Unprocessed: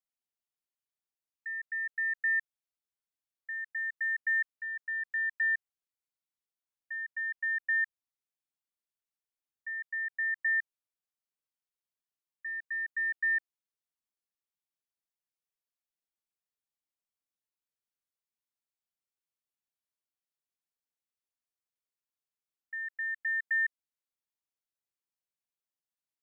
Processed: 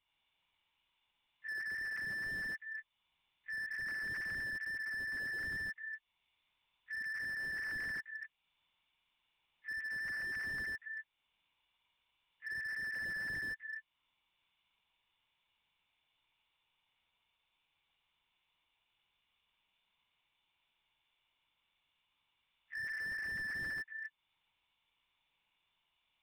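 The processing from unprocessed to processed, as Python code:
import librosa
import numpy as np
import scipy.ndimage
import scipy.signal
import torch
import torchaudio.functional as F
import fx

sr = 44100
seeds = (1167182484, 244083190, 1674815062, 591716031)

y = fx.freq_snap(x, sr, grid_st=3)
y = fx.fixed_phaser(y, sr, hz=1600.0, stages=6)
y = fx.transient(y, sr, attack_db=-9, sustain_db=-5)
y = fx.lpc_vocoder(y, sr, seeds[0], excitation='whisper', order=10)
y = fx.echo_multitap(y, sr, ms=(58, 64, 118, 138, 396), db=(-3.5, -15.0, -11.5, -3.0, -17.5))
y = fx.slew_limit(y, sr, full_power_hz=4.2)
y = y * 10.0 ** (13.5 / 20.0)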